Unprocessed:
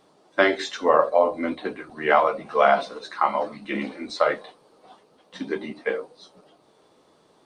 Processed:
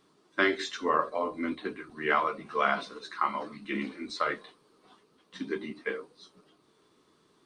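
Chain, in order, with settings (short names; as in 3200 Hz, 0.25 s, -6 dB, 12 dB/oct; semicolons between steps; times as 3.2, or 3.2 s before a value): band shelf 660 Hz -10 dB 1 oct; gain -4.5 dB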